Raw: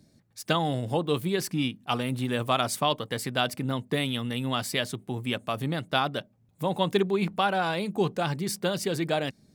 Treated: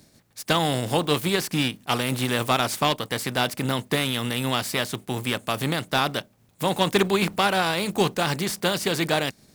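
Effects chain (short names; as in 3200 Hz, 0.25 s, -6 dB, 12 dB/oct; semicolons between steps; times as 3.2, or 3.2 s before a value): spectral contrast lowered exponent 0.65; slew limiter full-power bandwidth 240 Hz; gain +4 dB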